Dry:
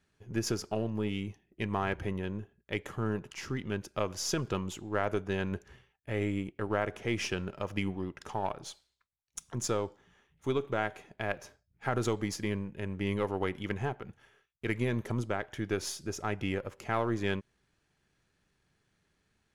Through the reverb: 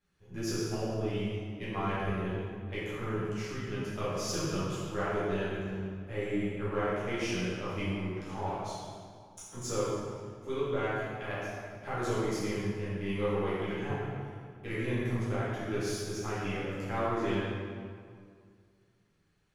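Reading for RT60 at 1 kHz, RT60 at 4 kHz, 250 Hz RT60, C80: 2.1 s, 1.4 s, 2.4 s, −0.5 dB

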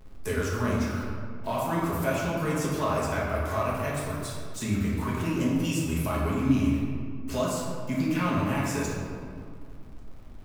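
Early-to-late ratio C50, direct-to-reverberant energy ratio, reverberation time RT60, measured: −0.5 dB, −6.0 dB, 2.2 s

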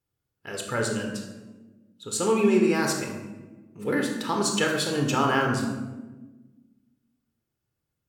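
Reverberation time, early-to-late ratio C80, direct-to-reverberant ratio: 1.2 s, 6.5 dB, 1.5 dB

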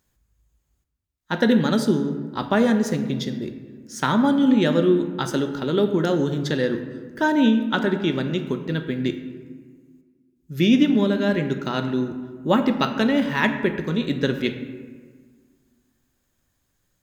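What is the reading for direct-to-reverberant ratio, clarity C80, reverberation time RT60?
7.0 dB, 10.5 dB, 1.6 s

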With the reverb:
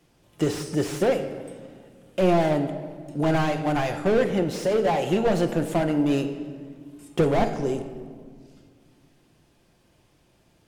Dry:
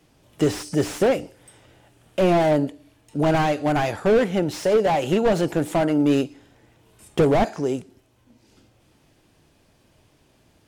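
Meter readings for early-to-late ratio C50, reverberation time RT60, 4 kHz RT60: 10.0 dB, 1.8 s, 1.2 s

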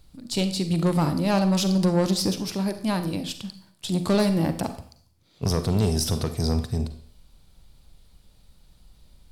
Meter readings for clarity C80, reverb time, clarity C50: 14.5 dB, 0.50 s, 11.0 dB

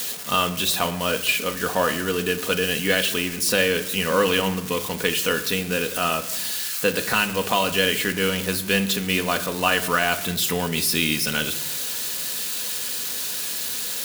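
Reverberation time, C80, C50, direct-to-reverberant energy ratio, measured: non-exponential decay, 16.0 dB, 13.5 dB, 5.5 dB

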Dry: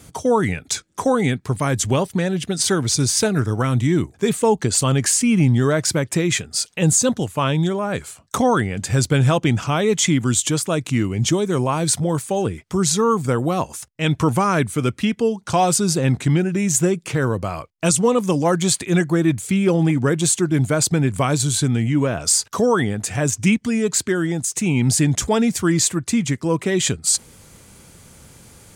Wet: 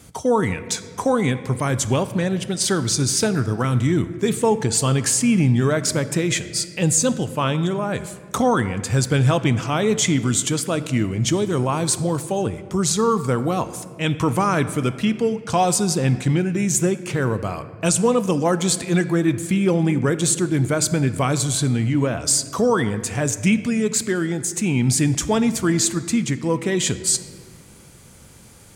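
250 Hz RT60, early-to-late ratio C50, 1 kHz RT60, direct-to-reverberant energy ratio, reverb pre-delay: 2.2 s, 13.5 dB, 1.6 s, 12.0 dB, 4 ms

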